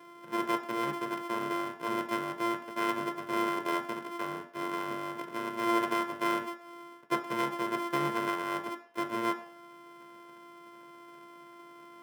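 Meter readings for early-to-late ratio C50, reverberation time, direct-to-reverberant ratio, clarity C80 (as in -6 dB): 13.0 dB, 0.60 s, 6.5 dB, 16.5 dB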